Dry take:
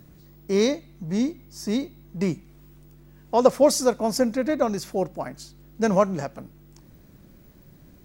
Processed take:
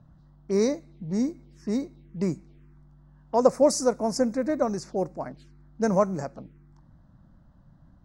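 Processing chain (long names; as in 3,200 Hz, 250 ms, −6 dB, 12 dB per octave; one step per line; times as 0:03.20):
low-pass that shuts in the quiet parts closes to 2,200 Hz, open at −19.5 dBFS
phaser swept by the level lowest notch 330 Hz, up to 3,200 Hz, full sweep at −26.5 dBFS
level −2 dB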